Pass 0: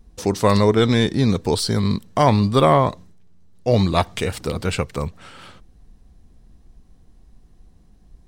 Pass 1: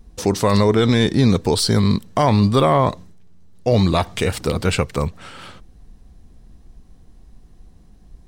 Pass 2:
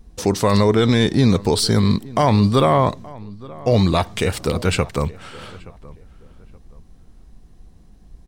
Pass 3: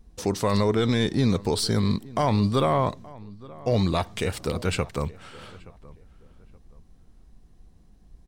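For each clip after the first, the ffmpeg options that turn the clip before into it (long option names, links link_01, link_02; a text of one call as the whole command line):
ffmpeg -i in.wav -af "alimiter=limit=-10.5dB:level=0:latency=1:release=35,volume=4dB" out.wav
ffmpeg -i in.wav -filter_complex "[0:a]asplit=2[link_01][link_02];[link_02]adelay=874,lowpass=frequency=1900:poles=1,volume=-20.5dB,asplit=2[link_03][link_04];[link_04]adelay=874,lowpass=frequency=1900:poles=1,volume=0.3[link_05];[link_01][link_03][link_05]amix=inputs=3:normalize=0" out.wav
ffmpeg -i in.wav -af "aeval=exprs='0.531*(cos(1*acos(clip(val(0)/0.531,-1,1)))-cos(1*PI/2))+0.0133*(cos(4*acos(clip(val(0)/0.531,-1,1)))-cos(4*PI/2))':channel_layout=same,volume=-7dB" out.wav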